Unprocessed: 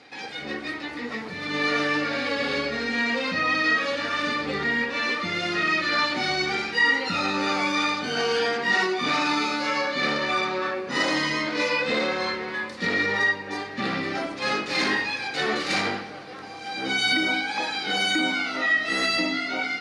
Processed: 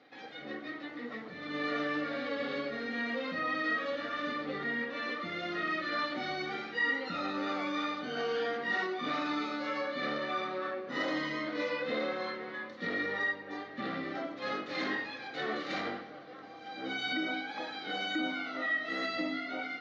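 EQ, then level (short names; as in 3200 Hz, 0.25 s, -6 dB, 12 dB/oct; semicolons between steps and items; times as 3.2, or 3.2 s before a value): air absorption 110 m; speaker cabinet 190–6400 Hz, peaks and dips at 200 Hz -5 dB, 400 Hz -6 dB, 910 Hz -10 dB, 1600 Hz -4 dB, 2500 Hz -9 dB, 4900 Hz -7 dB; high shelf 3700 Hz -6 dB; -4.5 dB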